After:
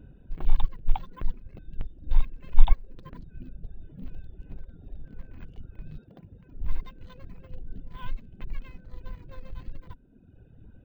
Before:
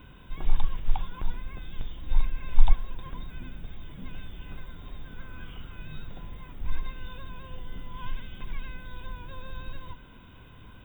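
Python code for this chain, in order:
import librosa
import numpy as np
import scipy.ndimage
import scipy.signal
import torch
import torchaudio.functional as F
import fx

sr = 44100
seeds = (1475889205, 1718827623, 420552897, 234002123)

y = fx.wiener(x, sr, points=41)
y = fx.highpass(y, sr, hz=fx.line((5.97, 140.0), (6.53, 52.0)), slope=12, at=(5.97, 6.53), fade=0.02)
y = fx.dereverb_blind(y, sr, rt60_s=1.3)
y = y * 10.0 ** (2.0 / 20.0)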